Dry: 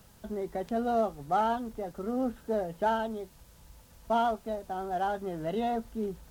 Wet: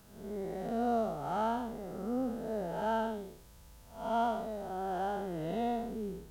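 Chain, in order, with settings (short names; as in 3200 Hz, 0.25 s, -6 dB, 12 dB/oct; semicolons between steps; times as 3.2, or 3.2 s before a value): time blur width 0.219 s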